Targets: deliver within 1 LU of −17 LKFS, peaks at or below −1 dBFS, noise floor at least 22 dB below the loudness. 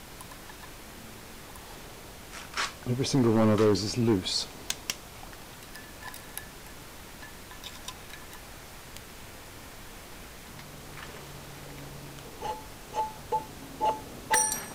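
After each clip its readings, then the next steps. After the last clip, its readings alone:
share of clipped samples 0.5%; peaks flattened at −17.5 dBFS; background noise floor −47 dBFS; target noise floor −52 dBFS; integrated loudness −29.5 LKFS; sample peak −17.5 dBFS; target loudness −17.0 LKFS
→ clipped peaks rebuilt −17.5 dBFS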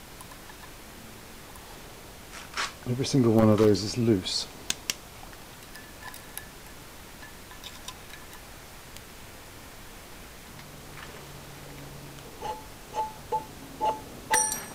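share of clipped samples 0.0%; background noise floor −47 dBFS; target noise floor −50 dBFS
→ noise reduction from a noise print 6 dB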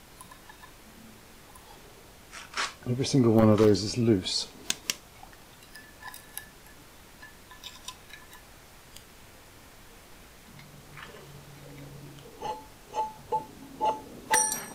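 background noise floor −53 dBFS; integrated loudness −27.5 LKFS; sample peak −8.5 dBFS; target loudness −17.0 LKFS
→ level +10.5 dB
brickwall limiter −1 dBFS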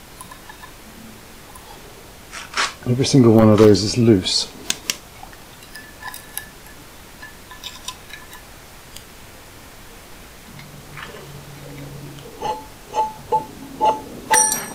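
integrated loudness −17.5 LKFS; sample peak −1.0 dBFS; background noise floor −42 dBFS

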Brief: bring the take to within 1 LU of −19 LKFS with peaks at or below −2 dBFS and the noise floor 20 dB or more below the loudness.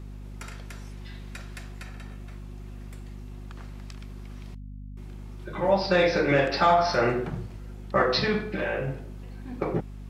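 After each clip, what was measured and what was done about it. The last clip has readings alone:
mains hum 50 Hz; hum harmonics up to 250 Hz; level of the hum −37 dBFS; integrated loudness −25.0 LKFS; sample peak −8.5 dBFS; target loudness −19.0 LKFS
→ hum removal 50 Hz, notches 5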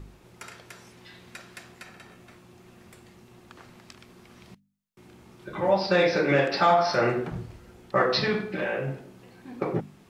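mains hum none found; integrated loudness −25.0 LKFS; sample peak −8.5 dBFS; target loudness −19.0 LKFS
→ level +6 dB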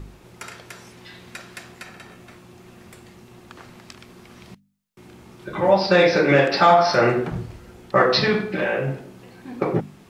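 integrated loudness −19.0 LKFS; sample peak −2.5 dBFS; background noise floor −50 dBFS

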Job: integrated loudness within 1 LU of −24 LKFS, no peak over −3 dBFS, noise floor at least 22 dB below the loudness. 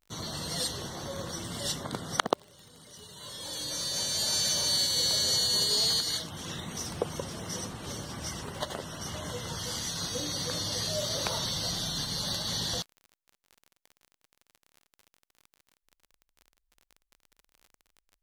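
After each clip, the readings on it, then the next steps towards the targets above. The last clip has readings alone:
crackle rate 36 per second; integrated loudness −30.0 LKFS; sample peak −5.0 dBFS; target loudness −24.0 LKFS
→ click removal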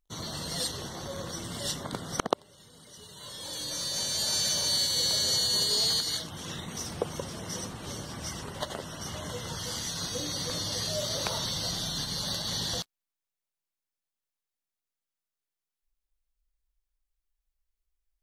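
crackle rate 0.11 per second; integrated loudness −30.0 LKFS; sample peak −5.0 dBFS; target loudness −24.0 LKFS
→ level +6 dB
brickwall limiter −3 dBFS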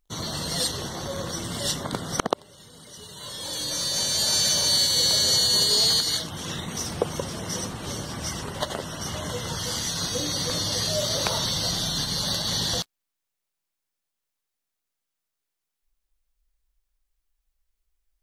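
integrated loudness −24.0 LKFS; sample peak −3.0 dBFS; background noise floor −83 dBFS

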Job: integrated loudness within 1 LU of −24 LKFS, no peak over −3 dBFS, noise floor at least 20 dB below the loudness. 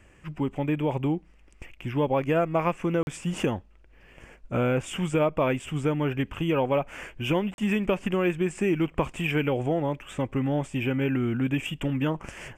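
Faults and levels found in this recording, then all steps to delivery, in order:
number of dropouts 2; longest dropout 41 ms; integrated loudness −27.5 LKFS; sample peak −12.0 dBFS; target loudness −24.0 LKFS
→ repair the gap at 0:03.03/0:07.54, 41 ms
level +3.5 dB

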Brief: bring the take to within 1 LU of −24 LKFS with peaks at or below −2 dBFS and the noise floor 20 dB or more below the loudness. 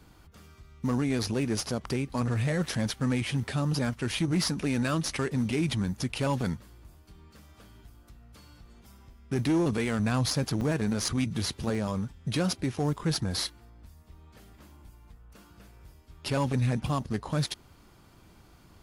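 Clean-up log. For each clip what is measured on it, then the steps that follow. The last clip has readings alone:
share of clipped samples 0.6%; peaks flattened at −20.5 dBFS; number of dropouts 2; longest dropout 1.8 ms; integrated loudness −29.5 LKFS; sample peak −20.5 dBFS; target loudness −24.0 LKFS
→ clipped peaks rebuilt −20.5 dBFS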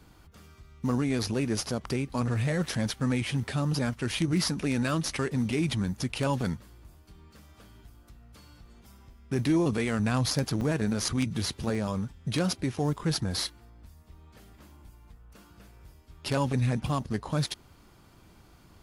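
share of clipped samples 0.0%; number of dropouts 2; longest dropout 1.8 ms
→ repair the gap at 0:10.61/0:11.75, 1.8 ms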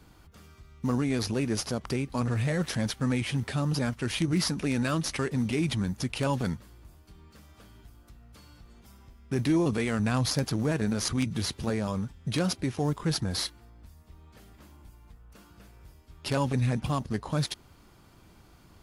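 number of dropouts 0; integrated loudness −29.5 LKFS; sample peak −11.5 dBFS; target loudness −24.0 LKFS
→ level +5.5 dB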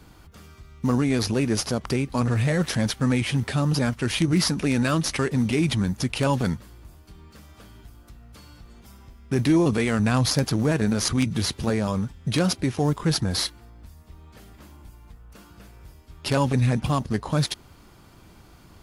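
integrated loudness −24.0 LKFS; sample peak −6.0 dBFS; background noise floor −51 dBFS

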